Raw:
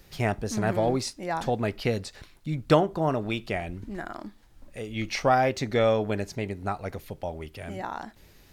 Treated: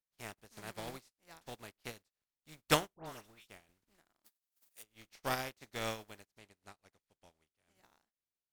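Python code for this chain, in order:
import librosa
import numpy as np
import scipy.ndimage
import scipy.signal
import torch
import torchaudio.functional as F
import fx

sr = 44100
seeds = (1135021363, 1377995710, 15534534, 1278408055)

y = fx.spec_flatten(x, sr, power=0.44)
y = fx.dispersion(y, sr, late='highs', ms=107.0, hz=1900.0, at=(2.94, 3.48))
y = fx.riaa(y, sr, side='recording', at=(4.24, 4.82), fade=0.02)
y = fx.lowpass(y, sr, hz=11000.0, slope=12, at=(6.38, 7.75))
y = fx.upward_expand(y, sr, threshold_db=-42.0, expansion=2.5)
y = y * librosa.db_to_amplitude(-7.5)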